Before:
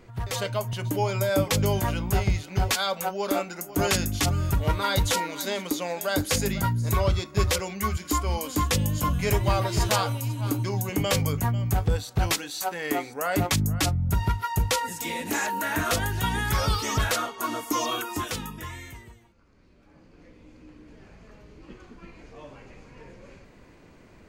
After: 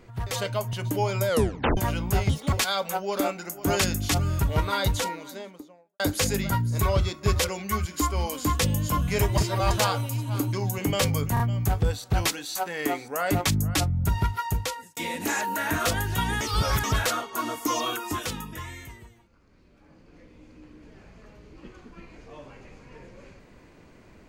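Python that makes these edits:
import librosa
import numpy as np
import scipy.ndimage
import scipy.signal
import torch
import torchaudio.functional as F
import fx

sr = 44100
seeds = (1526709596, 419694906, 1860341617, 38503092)

y = fx.studio_fade_out(x, sr, start_s=4.74, length_s=1.37)
y = fx.edit(y, sr, fx.tape_stop(start_s=1.28, length_s=0.49),
    fx.speed_span(start_s=2.29, length_s=0.35, speed=1.48),
    fx.reverse_span(start_s=9.49, length_s=0.33),
    fx.stutter(start_s=11.45, slice_s=0.03, count=3),
    fx.fade_out_span(start_s=14.45, length_s=0.57),
    fx.reverse_span(start_s=16.46, length_s=0.43), tone=tone)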